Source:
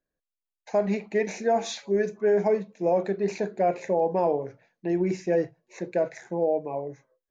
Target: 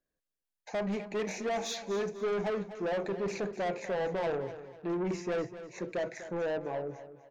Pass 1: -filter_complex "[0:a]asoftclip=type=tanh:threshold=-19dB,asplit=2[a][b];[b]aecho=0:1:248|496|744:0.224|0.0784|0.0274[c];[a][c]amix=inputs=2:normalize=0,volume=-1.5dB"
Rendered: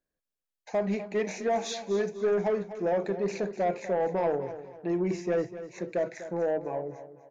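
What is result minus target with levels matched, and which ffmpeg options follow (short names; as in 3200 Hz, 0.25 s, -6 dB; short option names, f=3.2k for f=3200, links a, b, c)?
soft clip: distortion -8 dB
-filter_complex "[0:a]asoftclip=type=tanh:threshold=-27.5dB,asplit=2[a][b];[b]aecho=0:1:248|496|744:0.224|0.0784|0.0274[c];[a][c]amix=inputs=2:normalize=0,volume=-1.5dB"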